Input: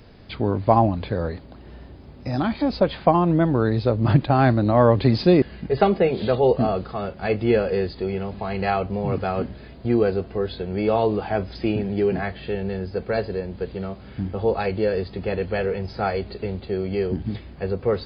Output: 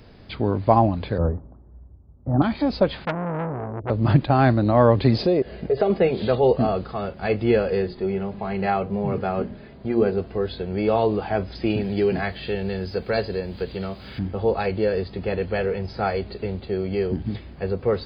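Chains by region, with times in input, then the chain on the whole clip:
0:01.18–0:02.42: Butterworth low-pass 1,300 Hz + low-shelf EQ 180 Hz +6.5 dB + multiband upward and downward expander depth 100%
0:03.05–0:03.90: Chebyshev low-pass with heavy ripple 670 Hz, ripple 6 dB + saturating transformer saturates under 1,400 Hz
0:05.15–0:05.90: flat-topped bell 520 Hz +9.5 dB 1.1 octaves + downward compressor 2.5 to 1, threshold −20 dBFS
0:07.82–0:10.18: high-shelf EQ 3,900 Hz −11 dB + mains-hum notches 60/120/180/240/300/360/420/480 Hz + comb filter 5 ms, depth 33%
0:11.70–0:14.19: high-shelf EQ 3,800 Hz +11.5 dB + one half of a high-frequency compander encoder only
whole clip: no processing

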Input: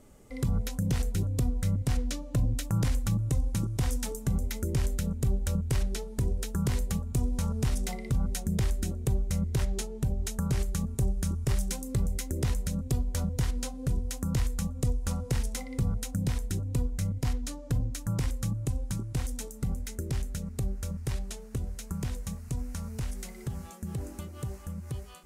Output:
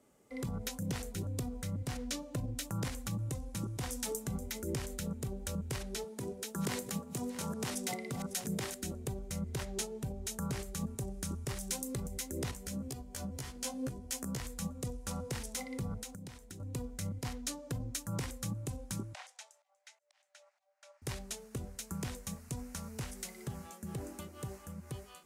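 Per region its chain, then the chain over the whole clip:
0:06.04–0:08.83: delay that plays each chunk backwards 501 ms, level −11.5 dB + high-pass filter 150 Hz
0:12.51–0:14.40: downward compressor 12 to 1, threshold −31 dBFS + notch filter 3,800 Hz, Q 21 + double-tracking delay 15 ms −2.5 dB
0:16.01–0:16.60: parametric band 12,000 Hz −3.5 dB 0.31 octaves + downward compressor 16 to 1, threshold −35 dBFS
0:19.14–0:21.02: volume swells 371 ms + Chebyshev high-pass with heavy ripple 570 Hz, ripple 3 dB + high-frequency loss of the air 87 metres
whole clip: brickwall limiter −24 dBFS; high-pass filter 250 Hz 6 dB per octave; multiband upward and downward expander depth 40%; level +1 dB

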